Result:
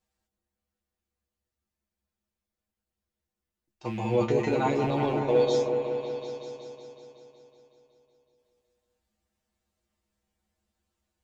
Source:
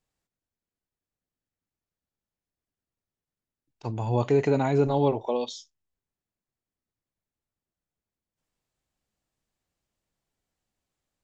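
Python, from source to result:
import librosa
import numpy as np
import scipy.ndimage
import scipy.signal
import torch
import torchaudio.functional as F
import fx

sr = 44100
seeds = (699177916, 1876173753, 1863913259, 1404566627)

y = fx.rattle_buzz(x, sr, strikes_db=-37.0, level_db=-34.0)
y = fx.comb_fb(y, sr, f0_hz=70.0, decay_s=0.15, harmonics='odd', damping=0.0, mix_pct=100)
y = fx.echo_opening(y, sr, ms=186, hz=750, octaves=1, feedback_pct=70, wet_db=-3)
y = y * librosa.db_to_amplitude(8.5)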